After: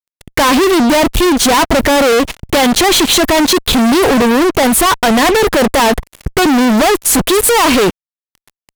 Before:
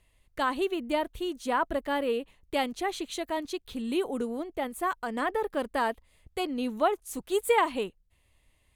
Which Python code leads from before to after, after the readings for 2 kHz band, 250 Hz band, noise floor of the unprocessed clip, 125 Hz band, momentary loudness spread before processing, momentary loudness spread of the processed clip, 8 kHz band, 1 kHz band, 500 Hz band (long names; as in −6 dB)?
+20.0 dB, +22.0 dB, −68 dBFS, can't be measured, 8 LU, 5 LU, +29.5 dB, +17.0 dB, +18.0 dB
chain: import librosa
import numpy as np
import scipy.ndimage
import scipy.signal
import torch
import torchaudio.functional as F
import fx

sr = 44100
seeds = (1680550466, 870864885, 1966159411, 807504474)

y = fx.fuzz(x, sr, gain_db=53.0, gate_db=-56.0)
y = y * 10.0 ** (4.5 / 20.0)